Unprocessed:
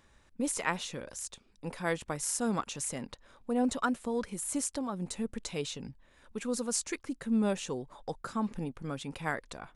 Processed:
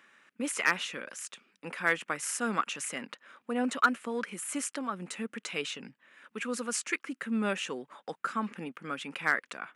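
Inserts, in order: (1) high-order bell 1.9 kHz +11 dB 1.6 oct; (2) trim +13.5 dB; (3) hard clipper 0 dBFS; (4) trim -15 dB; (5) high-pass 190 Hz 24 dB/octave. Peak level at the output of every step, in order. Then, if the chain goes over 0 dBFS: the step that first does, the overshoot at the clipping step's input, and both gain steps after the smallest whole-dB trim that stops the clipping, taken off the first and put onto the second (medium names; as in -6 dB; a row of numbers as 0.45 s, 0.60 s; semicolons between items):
-5.5 dBFS, +8.0 dBFS, 0.0 dBFS, -15.0 dBFS, -11.5 dBFS; step 2, 8.0 dB; step 2 +5.5 dB, step 4 -7 dB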